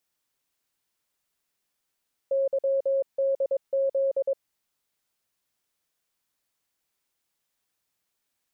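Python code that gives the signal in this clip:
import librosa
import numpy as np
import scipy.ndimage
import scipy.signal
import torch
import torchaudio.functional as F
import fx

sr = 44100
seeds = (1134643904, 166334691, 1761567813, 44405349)

y = fx.morse(sr, text='YDZ', wpm=22, hz=544.0, level_db=-21.0)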